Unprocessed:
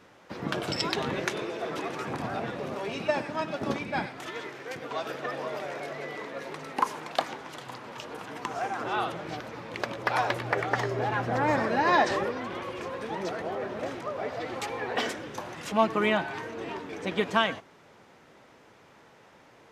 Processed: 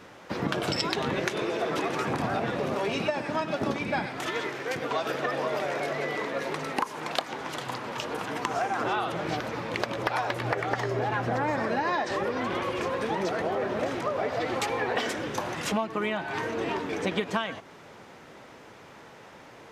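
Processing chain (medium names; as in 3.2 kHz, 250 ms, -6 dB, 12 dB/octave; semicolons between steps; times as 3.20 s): compression 16:1, threshold -31 dBFS, peak gain reduction 15.5 dB; trim +7 dB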